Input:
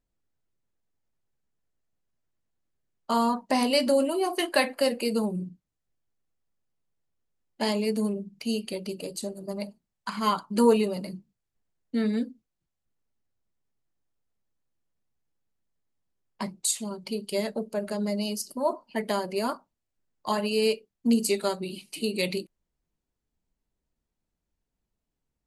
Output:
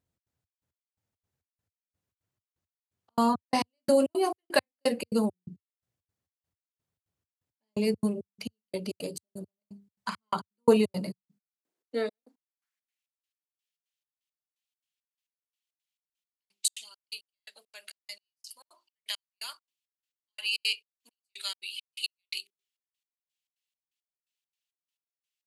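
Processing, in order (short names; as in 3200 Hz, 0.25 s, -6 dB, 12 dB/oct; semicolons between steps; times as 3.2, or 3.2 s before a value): notches 50/100/150/200/250/300/350/400 Hz; step gate "xx.xx..x..." 170 bpm -60 dB; high-pass sweep 92 Hz -> 2900 Hz, 10.93–13.07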